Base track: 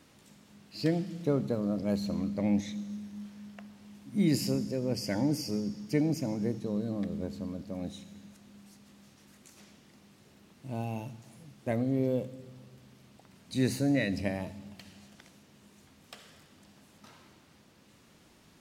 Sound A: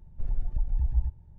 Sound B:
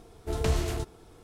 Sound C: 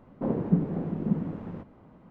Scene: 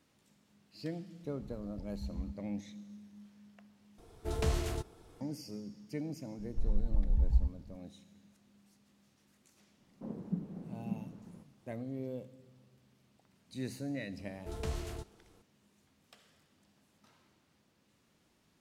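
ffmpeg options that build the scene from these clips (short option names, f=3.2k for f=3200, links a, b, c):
-filter_complex "[1:a]asplit=2[a][b];[2:a]asplit=2[c][d];[0:a]volume=-11.5dB[e];[a]highpass=73[f];[3:a]equalizer=f=200:t=o:w=0.45:g=8[g];[e]asplit=2[h][i];[h]atrim=end=3.984[j];[c]atrim=end=1.23,asetpts=PTS-STARTPTS,volume=-5dB[k];[i]atrim=start=5.206[l];[f]atrim=end=1.38,asetpts=PTS-STARTPTS,volume=-9.5dB,afade=t=in:d=0.004:c=hsin,afade=t=out:st=1.376:d=0.004:c=hsin,adelay=1220[m];[b]atrim=end=1.38,asetpts=PTS-STARTPTS,volume=-2dB,afade=t=in:d=0.004:c=hsin,afade=t=out:st=1.376:d=0.004:c=hsin,adelay=6380[n];[g]atrim=end=2.1,asetpts=PTS-STARTPTS,volume=-18dB,afade=t=in:d=0.004:c=hsin,afade=t=out:st=2.096:d=0.004:c=hsin,adelay=9800[o];[d]atrim=end=1.23,asetpts=PTS-STARTPTS,volume=-11dB,afade=t=in:d=0.004:c=hsin,afade=t=out:st=1.226:d=0.004:c=hsin,adelay=14190[p];[j][k]acrossfade=d=0.004:c1=hsin:c2=hsin[q];[q][l]acrossfade=d=0.004:c1=hsin:c2=hsin[r];[r][m][n][o][p]amix=inputs=5:normalize=0"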